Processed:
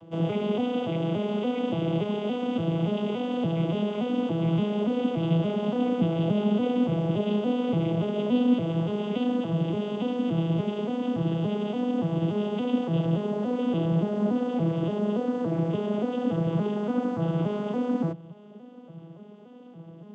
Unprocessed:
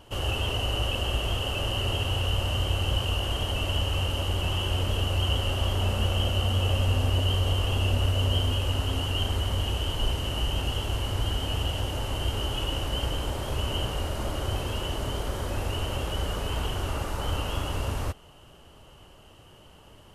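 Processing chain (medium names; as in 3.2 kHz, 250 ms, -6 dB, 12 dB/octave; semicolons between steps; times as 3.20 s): vocoder on a broken chord major triad, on E3, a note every 286 ms; tilt shelf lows +8.5 dB, about 900 Hz; trim +1 dB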